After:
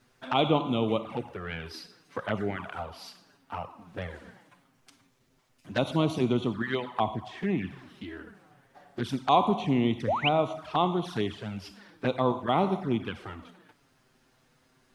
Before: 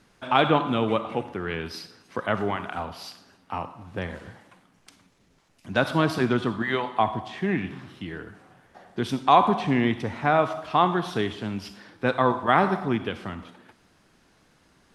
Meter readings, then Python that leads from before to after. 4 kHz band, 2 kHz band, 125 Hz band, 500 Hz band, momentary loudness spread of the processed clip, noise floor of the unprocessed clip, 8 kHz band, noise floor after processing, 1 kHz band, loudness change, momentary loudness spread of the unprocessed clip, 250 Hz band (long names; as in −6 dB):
−2.0 dB, −7.5 dB, −2.5 dB, −3.5 dB, 17 LU, −62 dBFS, can't be measured, −67 dBFS, −6.0 dB, −4.0 dB, 17 LU, −2.5 dB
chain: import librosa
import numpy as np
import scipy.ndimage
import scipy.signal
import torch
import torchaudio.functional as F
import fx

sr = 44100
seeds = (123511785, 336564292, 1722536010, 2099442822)

y = fx.spec_paint(x, sr, seeds[0], shape='rise', start_s=10.07, length_s=0.22, low_hz=460.0, high_hz=3300.0, level_db=-21.0)
y = fx.quant_dither(y, sr, seeds[1], bits=12, dither='none')
y = fx.env_flanger(y, sr, rest_ms=8.2, full_db=-20.5)
y = y * librosa.db_to_amplitude(-2.0)